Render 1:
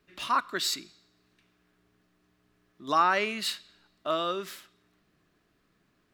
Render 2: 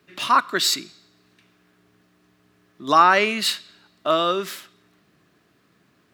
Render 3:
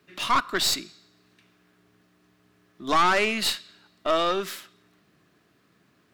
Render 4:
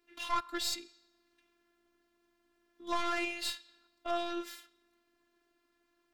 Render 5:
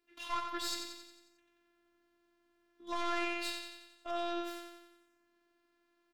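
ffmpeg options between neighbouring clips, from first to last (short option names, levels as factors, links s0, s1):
-af "highpass=f=81:w=0.5412,highpass=f=81:w=1.3066,volume=2.82"
-af "aeval=exprs='(tanh(6.31*val(0)+0.5)-tanh(0.5))/6.31':c=same"
-af "afftfilt=real='hypot(re,im)*cos(PI*b)':imag='0':win_size=512:overlap=0.75,volume=0.398"
-af "aecho=1:1:90|180|270|360|450|540|630:0.447|0.255|0.145|0.0827|0.0472|0.0269|0.0153,volume=0.562"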